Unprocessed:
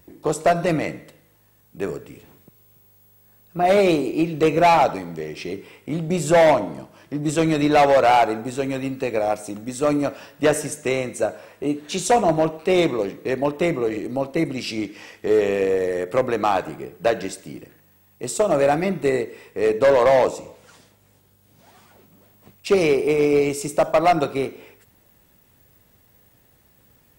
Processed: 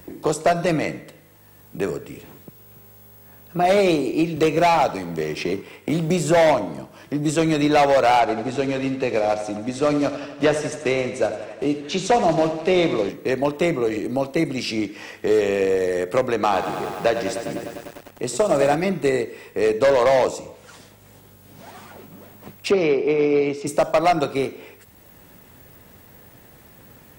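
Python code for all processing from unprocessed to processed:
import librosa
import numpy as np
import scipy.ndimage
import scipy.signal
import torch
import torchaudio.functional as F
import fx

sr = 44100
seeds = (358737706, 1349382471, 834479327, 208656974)

y = fx.chain(x, sr, fx.law_mismatch(coded='A'),
    fx.band_squash(depth_pct=40), at=(4.36, 6.37))
y = fx.chain(y, sr, fx.block_float(bits=5),
    fx.lowpass(hz=5000.0, slope=12),
    fx.echo_feedback(ms=87, feedback_pct=58, wet_db=-12.0), at=(8.2, 13.09))
y = fx.chain(y, sr, fx.high_shelf(hz=9200.0, db=-6.5),
    fx.echo_crushed(ms=100, feedback_pct=80, bits=7, wet_db=-10.0), at=(16.33, 18.75))
y = fx.chain(y, sr, fx.highpass(hz=150.0, slope=12),
    fx.air_absorb(metres=240.0), at=(22.71, 23.67))
y = fx.dynamic_eq(y, sr, hz=5300.0, q=0.93, threshold_db=-44.0, ratio=4.0, max_db=4)
y = fx.band_squash(y, sr, depth_pct=40)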